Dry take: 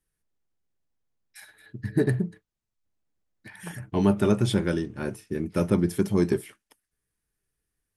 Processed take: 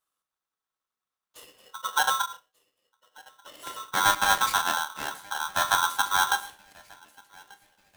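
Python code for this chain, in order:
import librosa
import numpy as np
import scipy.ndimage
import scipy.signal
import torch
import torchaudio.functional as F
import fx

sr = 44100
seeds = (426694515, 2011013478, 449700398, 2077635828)

y = scipy.signal.sosfilt(scipy.signal.butter(2, 45.0, 'highpass', fs=sr, output='sos'), x)
y = fx.sample_gate(y, sr, floor_db=-28.0, at=(4.03, 4.58))
y = fx.echo_thinned(y, sr, ms=1187, feedback_pct=57, hz=620.0, wet_db=-19.5)
y = fx.rev_gated(y, sr, seeds[0], gate_ms=160, shape='falling', drr_db=8.0)
y = y * np.sign(np.sin(2.0 * np.pi * 1200.0 * np.arange(len(y)) / sr))
y = y * 10.0 ** (-2.0 / 20.0)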